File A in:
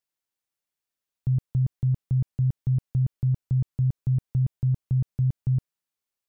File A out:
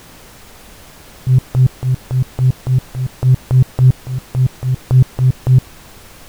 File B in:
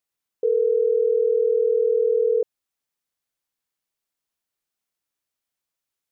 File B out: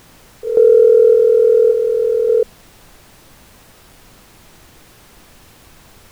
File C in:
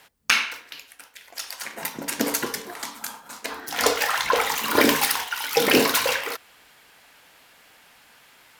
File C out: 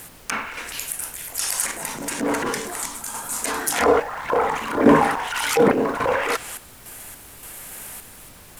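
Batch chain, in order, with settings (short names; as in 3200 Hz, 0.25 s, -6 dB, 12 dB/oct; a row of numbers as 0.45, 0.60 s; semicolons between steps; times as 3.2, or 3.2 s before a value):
treble ducked by the level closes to 980 Hz, closed at -19 dBFS; transient shaper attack -9 dB, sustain +6 dB; resonant high shelf 6400 Hz +13.5 dB, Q 1.5; random-step tremolo, depth 80%; added noise pink -57 dBFS; normalise peaks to -2 dBFS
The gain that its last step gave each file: +17.5, +12.0, +10.5 dB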